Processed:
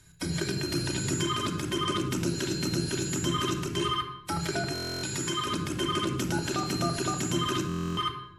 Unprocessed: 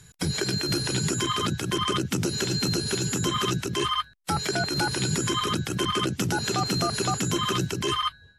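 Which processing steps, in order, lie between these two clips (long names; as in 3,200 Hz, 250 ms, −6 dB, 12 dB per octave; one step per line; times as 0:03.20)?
0:04.72–0:05.47: low-shelf EQ 410 Hz −6.5 dB
rectangular room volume 3,200 cubic metres, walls furnished, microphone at 2.7 metres
buffer that repeats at 0:04.73/0:07.67, samples 1,024, times 12
level −6 dB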